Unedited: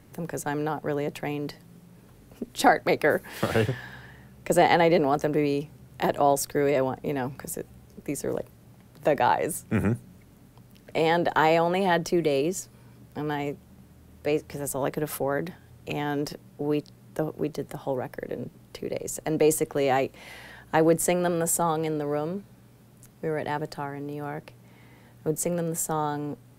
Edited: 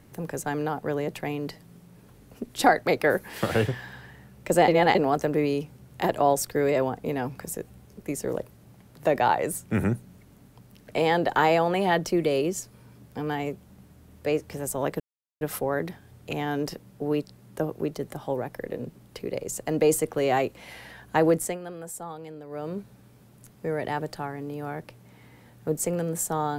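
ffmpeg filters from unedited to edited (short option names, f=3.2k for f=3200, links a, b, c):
-filter_complex "[0:a]asplit=6[a][b][c][d][e][f];[a]atrim=end=4.682[g];[b]atrim=start=4.678:end=4.952,asetpts=PTS-STARTPTS,areverse[h];[c]atrim=start=4.948:end=15,asetpts=PTS-STARTPTS,afade=t=out:st=10.048:d=0.004:c=hsin,apad=pad_dur=0.41[i];[d]atrim=start=15:end=21.18,asetpts=PTS-STARTPTS,afade=t=in:d=0.004:c=hsin,afade=t=out:st=5.88:d=0.3:silence=0.223872[j];[e]atrim=start=21.18:end=22.08,asetpts=PTS-STARTPTS,volume=-13dB[k];[f]atrim=start=22.08,asetpts=PTS-STARTPTS,afade=t=in:d=0.3:silence=0.223872[l];[g][h]acrossfade=d=0.004:c1=hsin:c2=hsin[m];[i][j][k][l]concat=n=4:v=0:a=1[n];[m][n]acrossfade=d=0.004:c1=hsin:c2=hsin"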